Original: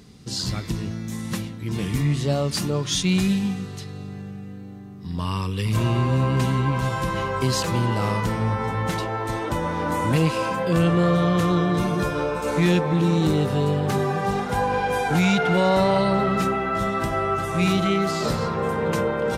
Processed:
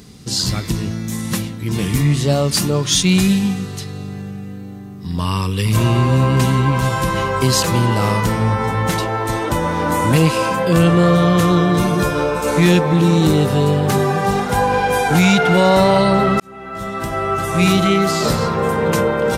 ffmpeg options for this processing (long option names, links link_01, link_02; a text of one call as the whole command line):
ffmpeg -i in.wav -filter_complex "[0:a]asplit=2[link_01][link_02];[link_01]atrim=end=16.4,asetpts=PTS-STARTPTS,afade=type=out:start_time=16.396:duration=0.004:curve=hsin[link_03];[link_02]atrim=start=16.4,asetpts=PTS-STARTPTS,afade=type=in:duration=1.21[link_04];[link_03][link_04]concat=n=2:v=0:a=1,highshelf=frequency=7200:gain=7.5,volume=6.5dB" out.wav